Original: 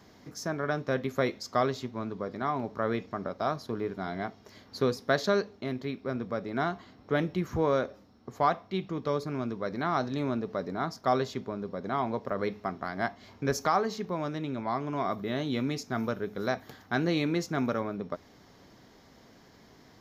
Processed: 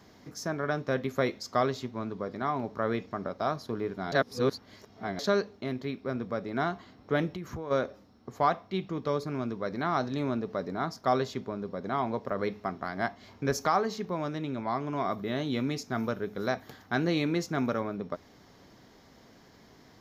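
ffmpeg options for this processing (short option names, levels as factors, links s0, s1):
-filter_complex "[0:a]asplit=3[s0][s1][s2];[s0]afade=t=out:st=7.29:d=0.02[s3];[s1]acompressor=threshold=0.0224:ratio=10:attack=3.2:release=140:knee=1:detection=peak,afade=t=in:st=7.29:d=0.02,afade=t=out:st=7.7:d=0.02[s4];[s2]afade=t=in:st=7.7:d=0.02[s5];[s3][s4][s5]amix=inputs=3:normalize=0,asplit=3[s6][s7][s8];[s6]atrim=end=4.122[s9];[s7]atrim=start=4.118:end=5.192,asetpts=PTS-STARTPTS,areverse[s10];[s8]atrim=start=5.188[s11];[s9][s10]acrossfade=d=0.004:c1=hsin:c2=hsin[s12];[s12][s11]acrossfade=d=0.004:c1=hsin:c2=hsin"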